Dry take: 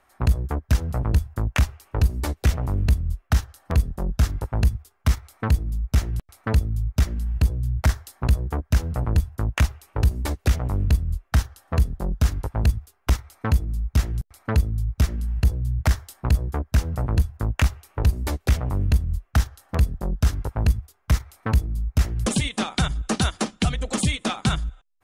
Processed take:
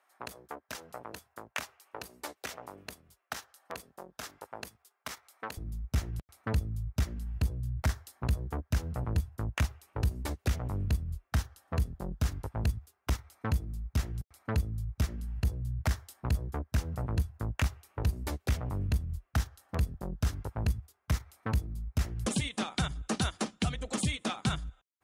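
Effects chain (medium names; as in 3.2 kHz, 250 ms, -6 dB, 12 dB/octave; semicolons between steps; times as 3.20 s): high-pass 500 Hz 12 dB/octave, from 5.57 s 62 Hz; trim -8 dB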